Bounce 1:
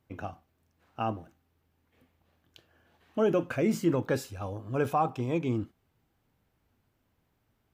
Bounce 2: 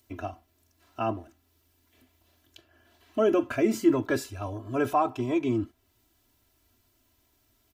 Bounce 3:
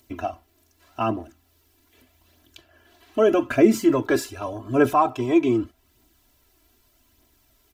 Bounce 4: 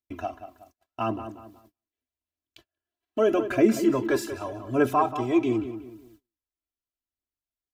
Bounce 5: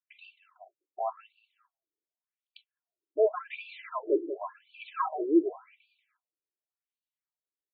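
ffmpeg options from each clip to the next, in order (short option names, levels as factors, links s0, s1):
-filter_complex "[0:a]aecho=1:1:3:0.99,acrossover=split=3600[s0][s1];[s1]acompressor=mode=upward:threshold=0.00112:ratio=2.5[s2];[s0][s2]amix=inputs=2:normalize=0"
-af "equalizer=f=98:w=7:g=-14.5,aphaser=in_gain=1:out_gain=1:delay=3.1:decay=0.37:speed=0.83:type=triangular,volume=1.88"
-filter_complex "[0:a]asplit=2[s0][s1];[s1]adelay=185,lowpass=f=2800:p=1,volume=0.299,asplit=2[s2][s3];[s3]adelay=185,lowpass=f=2800:p=1,volume=0.37,asplit=2[s4][s5];[s5]adelay=185,lowpass=f=2800:p=1,volume=0.37,asplit=2[s6][s7];[s7]adelay=185,lowpass=f=2800:p=1,volume=0.37[s8];[s0][s2][s4][s6][s8]amix=inputs=5:normalize=0,agate=range=0.0224:threshold=0.00355:ratio=16:detection=peak,volume=0.631"
-af "afftfilt=real='re*between(b*sr/1024,370*pow(3400/370,0.5+0.5*sin(2*PI*0.89*pts/sr))/1.41,370*pow(3400/370,0.5+0.5*sin(2*PI*0.89*pts/sr))*1.41)':imag='im*between(b*sr/1024,370*pow(3400/370,0.5+0.5*sin(2*PI*0.89*pts/sr))/1.41,370*pow(3400/370,0.5+0.5*sin(2*PI*0.89*pts/sr))*1.41)':win_size=1024:overlap=0.75"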